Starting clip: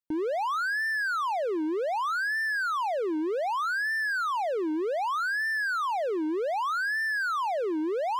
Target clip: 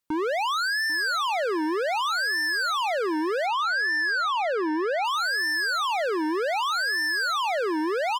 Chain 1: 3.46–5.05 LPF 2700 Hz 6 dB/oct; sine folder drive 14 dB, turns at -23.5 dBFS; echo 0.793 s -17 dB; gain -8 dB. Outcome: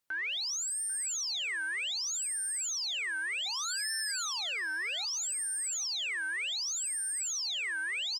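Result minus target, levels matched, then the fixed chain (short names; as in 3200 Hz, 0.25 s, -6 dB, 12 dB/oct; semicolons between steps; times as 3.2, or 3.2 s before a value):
sine folder: distortion +29 dB
3.46–5.05 LPF 2700 Hz 6 dB/oct; sine folder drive 14 dB, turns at -15 dBFS; echo 0.793 s -17 dB; gain -8 dB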